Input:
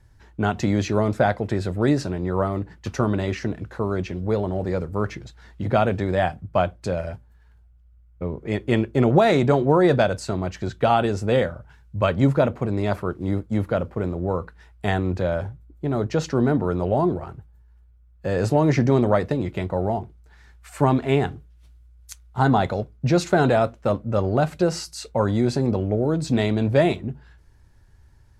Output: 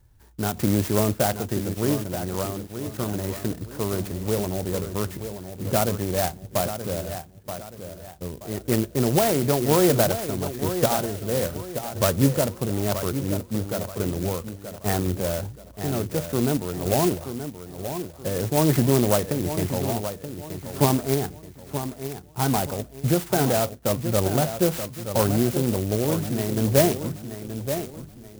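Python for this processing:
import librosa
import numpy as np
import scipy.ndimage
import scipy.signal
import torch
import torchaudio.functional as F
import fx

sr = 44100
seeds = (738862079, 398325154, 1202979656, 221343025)

p1 = fx.tremolo_random(x, sr, seeds[0], hz=3.5, depth_pct=55)
p2 = p1 + fx.echo_feedback(p1, sr, ms=928, feedback_pct=35, wet_db=-9.5, dry=0)
y = fx.clock_jitter(p2, sr, seeds[1], jitter_ms=0.11)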